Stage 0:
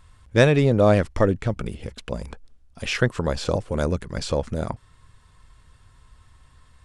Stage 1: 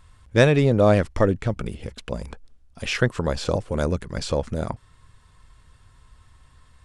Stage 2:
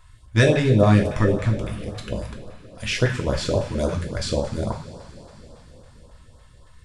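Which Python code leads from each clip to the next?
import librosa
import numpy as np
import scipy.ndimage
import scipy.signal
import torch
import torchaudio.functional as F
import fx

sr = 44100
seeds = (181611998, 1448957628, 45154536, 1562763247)

y1 = x
y2 = fx.rev_double_slope(y1, sr, seeds[0], early_s=0.47, late_s=4.7, knee_db=-18, drr_db=0.5)
y2 = fx.filter_lfo_notch(y2, sr, shape='saw_up', hz=3.6, low_hz=220.0, high_hz=2600.0, q=0.77)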